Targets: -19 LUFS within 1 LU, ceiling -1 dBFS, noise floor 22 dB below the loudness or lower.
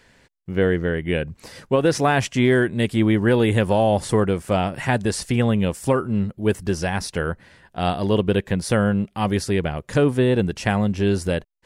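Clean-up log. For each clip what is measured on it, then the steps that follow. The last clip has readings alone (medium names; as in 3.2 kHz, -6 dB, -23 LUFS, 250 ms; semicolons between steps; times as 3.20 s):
loudness -21.0 LUFS; peak level -6.0 dBFS; loudness target -19.0 LUFS
-> trim +2 dB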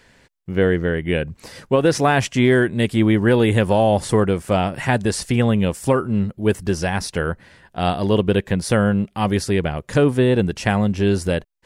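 loudness -19.0 LUFS; peak level -4.0 dBFS; noise floor -58 dBFS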